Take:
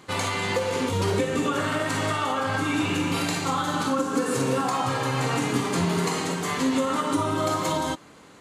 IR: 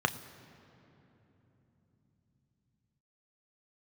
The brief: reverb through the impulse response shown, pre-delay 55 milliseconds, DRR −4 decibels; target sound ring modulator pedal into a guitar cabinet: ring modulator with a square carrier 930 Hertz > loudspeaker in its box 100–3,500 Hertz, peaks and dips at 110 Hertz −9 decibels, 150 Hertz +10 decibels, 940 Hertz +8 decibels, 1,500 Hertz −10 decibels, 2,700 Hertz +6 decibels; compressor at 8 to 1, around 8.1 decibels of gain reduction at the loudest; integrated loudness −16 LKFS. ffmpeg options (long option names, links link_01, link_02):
-filter_complex "[0:a]acompressor=threshold=-28dB:ratio=8,asplit=2[link_01][link_02];[1:a]atrim=start_sample=2205,adelay=55[link_03];[link_02][link_03]afir=irnorm=-1:irlink=0,volume=-5.5dB[link_04];[link_01][link_04]amix=inputs=2:normalize=0,aeval=exprs='val(0)*sgn(sin(2*PI*930*n/s))':channel_layout=same,highpass=100,equalizer=frequency=110:width_type=q:width=4:gain=-9,equalizer=frequency=150:width_type=q:width=4:gain=10,equalizer=frequency=940:width_type=q:width=4:gain=8,equalizer=frequency=1500:width_type=q:width=4:gain=-10,equalizer=frequency=2700:width_type=q:width=4:gain=6,lowpass=frequency=3500:width=0.5412,lowpass=frequency=3500:width=1.3066,volume=8.5dB"